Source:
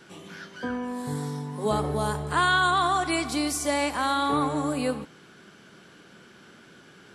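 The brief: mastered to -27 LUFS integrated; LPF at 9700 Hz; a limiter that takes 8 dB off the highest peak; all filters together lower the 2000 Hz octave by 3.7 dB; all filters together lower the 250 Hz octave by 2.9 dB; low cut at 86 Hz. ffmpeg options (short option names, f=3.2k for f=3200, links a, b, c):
-af "highpass=86,lowpass=9.7k,equalizer=f=250:t=o:g=-3.5,equalizer=f=2k:t=o:g=-6,volume=4.5dB,alimiter=limit=-17dB:level=0:latency=1"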